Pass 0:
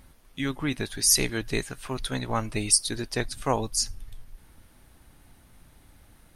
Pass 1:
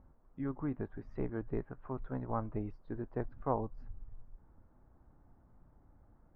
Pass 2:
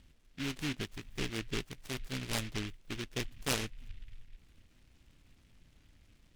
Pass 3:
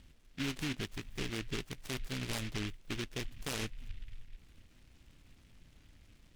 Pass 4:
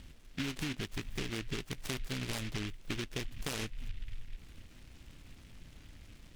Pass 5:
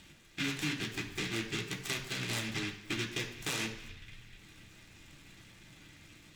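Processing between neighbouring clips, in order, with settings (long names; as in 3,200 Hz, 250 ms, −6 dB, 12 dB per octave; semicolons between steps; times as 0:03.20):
low-pass filter 1,200 Hz 24 dB per octave; level −7.5 dB
short delay modulated by noise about 2,400 Hz, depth 0.34 ms
brickwall limiter −30.5 dBFS, peak gain reduction 11 dB; level +2.5 dB
downward compressor, threshold −41 dBFS, peak gain reduction 8.5 dB; level +7 dB
convolution reverb RT60 1.0 s, pre-delay 3 ms, DRR −1.5 dB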